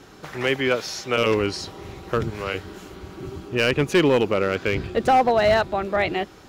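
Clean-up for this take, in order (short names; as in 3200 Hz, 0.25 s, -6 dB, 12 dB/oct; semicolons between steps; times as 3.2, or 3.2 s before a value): clip repair -12 dBFS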